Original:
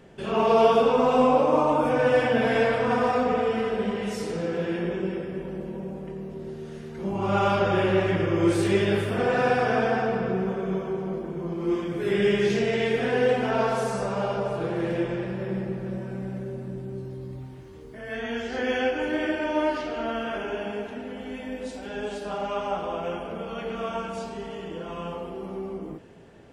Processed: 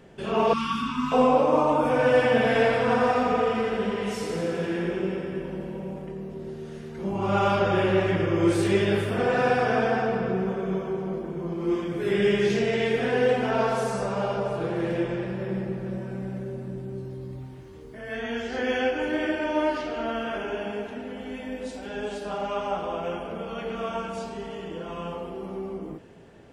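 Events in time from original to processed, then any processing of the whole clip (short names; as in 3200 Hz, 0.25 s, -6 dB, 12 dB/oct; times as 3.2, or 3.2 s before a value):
0.53–1.12 elliptic band-stop 300–1100 Hz, stop band 50 dB
1.8–6.05 thinning echo 86 ms, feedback 71%, level -6.5 dB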